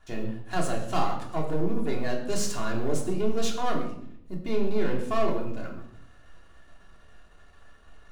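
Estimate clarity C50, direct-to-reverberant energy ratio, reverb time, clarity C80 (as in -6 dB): 7.0 dB, -1.0 dB, 0.70 s, 9.5 dB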